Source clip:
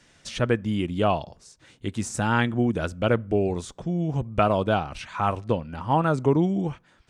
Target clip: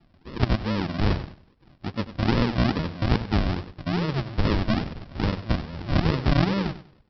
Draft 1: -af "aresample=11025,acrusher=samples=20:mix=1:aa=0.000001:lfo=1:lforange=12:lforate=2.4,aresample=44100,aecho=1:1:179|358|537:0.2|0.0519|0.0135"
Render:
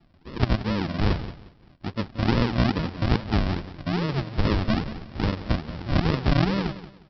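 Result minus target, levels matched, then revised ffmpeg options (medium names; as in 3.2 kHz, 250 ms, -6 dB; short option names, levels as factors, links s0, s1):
echo 82 ms late
-af "aresample=11025,acrusher=samples=20:mix=1:aa=0.000001:lfo=1:lforange=12:lforate=2.4,aresample=44100,aecho=1:1:97|194|291:0.2|0.0519|0.0135"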